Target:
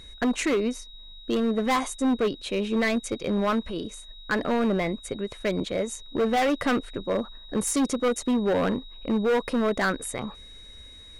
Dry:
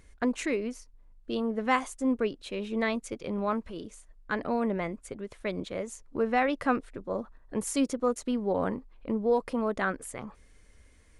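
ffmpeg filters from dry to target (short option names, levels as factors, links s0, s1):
-af "asoftclip=type=hard:threshold=0.0447,aeval=exprs='val(0)+0.00224*sin(2*PI*3800*n/s)':c=same,volume=2.37"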